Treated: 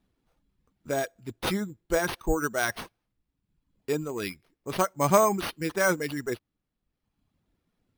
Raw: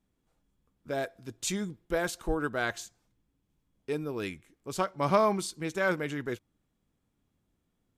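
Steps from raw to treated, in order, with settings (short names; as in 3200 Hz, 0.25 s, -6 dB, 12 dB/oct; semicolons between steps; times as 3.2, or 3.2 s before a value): reverb removal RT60 1.1 s; sample-and-hold 6×; gain +4.5 dB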